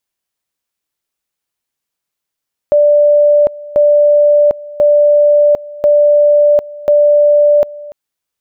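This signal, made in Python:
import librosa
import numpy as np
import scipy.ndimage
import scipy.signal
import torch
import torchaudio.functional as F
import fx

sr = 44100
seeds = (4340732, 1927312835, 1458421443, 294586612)

y = fx.two_level_tone(sr, hz=588.0, level_db=-5.0, drop_db=20.5, high_s=0.75, low_s=0.29, rounds=5)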